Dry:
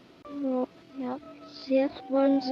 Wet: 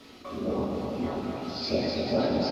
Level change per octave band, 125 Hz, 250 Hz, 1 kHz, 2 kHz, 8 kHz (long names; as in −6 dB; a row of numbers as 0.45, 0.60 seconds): +19.0 dB, −1.5 dB, +0.5 dB, +3.5 dB, can't be measured